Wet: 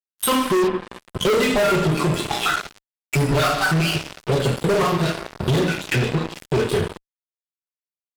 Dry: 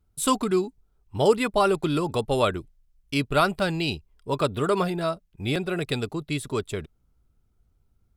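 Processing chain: random holes in the spectrogram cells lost 64%; two-slope reverb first 0.55 s, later 3.6 s, from -19 dB, DRR -4.5 dB; dynamic bell 1.5 kHz, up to +3 dB, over -37 dBFS, Q 2.4; 5.78–6.55 s: low-pass 5.5 kHz 12 dB/octave; fuzz box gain 25 dB, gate -33 dBFS; 0.67–1.21 s: low-pass that closes with the level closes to 2.9 kHz, closed at -18 dBFS; compression 2.5:1, threshold -24 dBFS, peak gain reduction 7 dB; trim +4 dB

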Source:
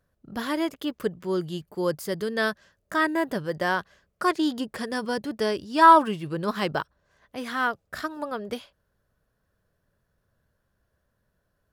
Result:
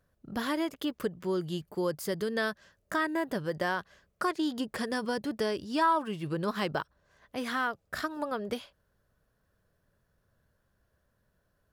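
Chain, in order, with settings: compression 2.5:1, threshold -29 dBFS, peak gain reduction 13 dB

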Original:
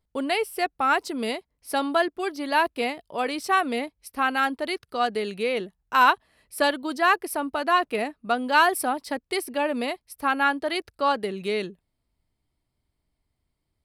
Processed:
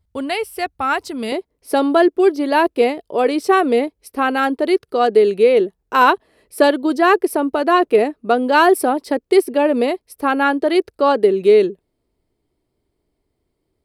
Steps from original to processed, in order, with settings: peaking EQ 80 Hz +15 dB 1.2 oct, from 1.32 s 400 Hz; trim +2.5 dB

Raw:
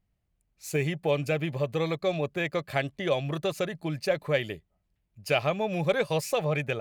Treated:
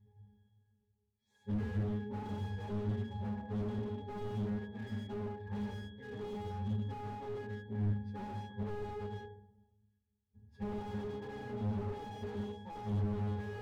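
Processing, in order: cycle switcher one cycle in 3, inverted; reverse; upward compressor, threshold -32 dBFS; reverse; time stretch by phase-locked vocoder 2×; pitch-class resonator G#, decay 0.63 s; on a send at -3.5 dB: reverberation RT60 0.60 s, pre-delay 94 ms; on the sum: slew-rate limiter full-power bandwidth 1.9 Hz; trim +8 dB

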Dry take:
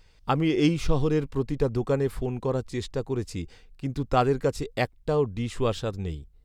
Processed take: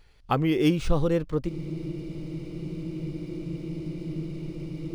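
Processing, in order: gliding tape speed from 92% -> 169%; spectral freeze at 1.50 s, 3.49 s; decimation joined by straight lines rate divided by 3×

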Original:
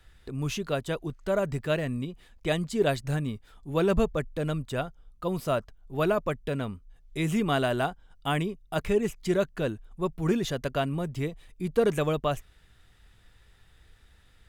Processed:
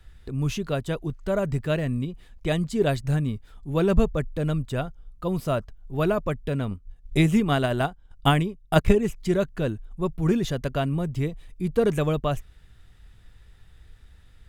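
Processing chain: bass shelf 210 Hz +8.5 dB; 6.71–8.95 s: transient shaper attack +10 dB, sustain -6 dB

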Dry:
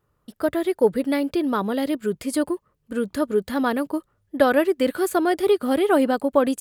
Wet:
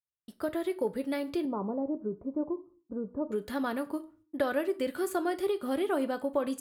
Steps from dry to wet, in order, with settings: 1.45–3.32 s: Chebyshev low-pass 1 kHz, order 4; compression 2:1, threshold -22 dBFS, peak gain reduction 6 dB; gate -56 dBFS, range -33 dB; on a send: high-pass 250 Hz + reverberation RT60 0.35 s, pre-delay 4 ms, DRR 9 dB; on the sum: trim -7.5 dB

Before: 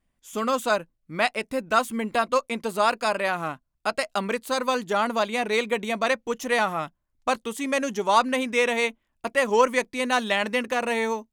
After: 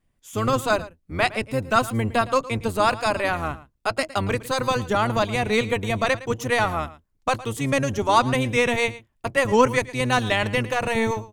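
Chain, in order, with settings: octave divider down 1 oct, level +2 dB; delay 112 ms -17.5 dB; trim +1.5 dB

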